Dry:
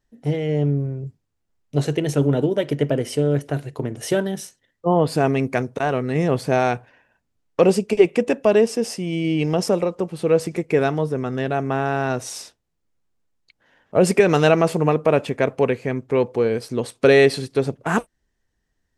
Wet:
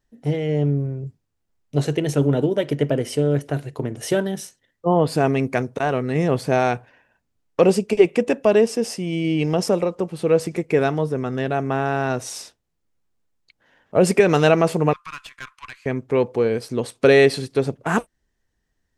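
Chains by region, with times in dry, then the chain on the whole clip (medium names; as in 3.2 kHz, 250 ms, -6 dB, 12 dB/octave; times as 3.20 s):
14.93–15.86 s: rippled Chebyshev high-pass 1 kHz, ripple 3 dB + valve stage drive 27 dB, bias 0.65
whole clip: none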